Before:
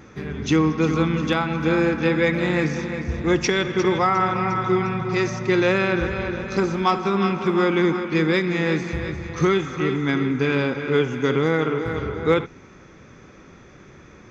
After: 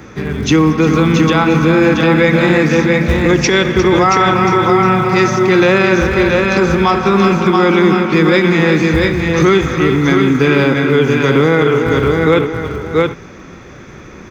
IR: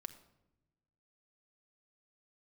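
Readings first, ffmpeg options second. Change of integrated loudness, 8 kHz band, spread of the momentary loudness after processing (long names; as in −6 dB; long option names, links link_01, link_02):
+10.0 dB, can't be measured, 3 LU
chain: -filter_complex "[0:a]acrossover=split=130|600|2200[link_01][link_02][link_03][link_04];[link_01]acrusher=bits=4:mode=log:mix=0:aa=0.000001[link_05];[link_05][link_02][link_03][link_04]amix=inputs=4:normalize=0,aecho=1:1:678:0.562,alimiter=level_in=11.5dB:limit=-1dB:release=50:level=0:latency=1,volume=-1dB"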